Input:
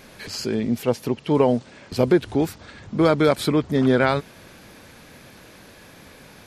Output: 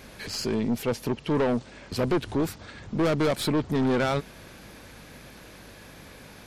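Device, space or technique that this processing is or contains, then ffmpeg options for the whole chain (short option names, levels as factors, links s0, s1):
valve amplifier with mains hum: -af "aeval=exprs='(tanh(10*val(0)+0.35)-tanh(0.35))/10':c=same,aeval=exprs='val(0)+0.002*(sin(2*PI*50*n/s)+sin(2*PI*2*50*n/s)/2+sin(2*PI*3*50*n/s)/3+sin(2*PI*4*50*n/s)/4+sin(2*PI*5*50*n/s)/5)':c=same"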